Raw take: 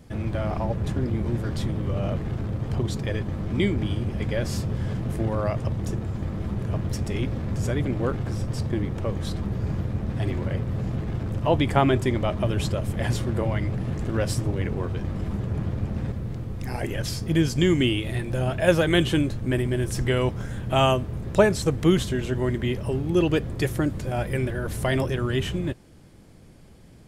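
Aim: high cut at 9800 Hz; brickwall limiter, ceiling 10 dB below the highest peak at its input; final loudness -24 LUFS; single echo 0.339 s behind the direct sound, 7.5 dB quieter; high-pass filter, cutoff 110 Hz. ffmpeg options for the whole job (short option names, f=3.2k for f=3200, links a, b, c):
-af "highpass=110,lowpass=9.8k,alimiter=limit=-14.5dB:level=0:latency=1,aecho=1:1:339:0.422,volume=3.5dB"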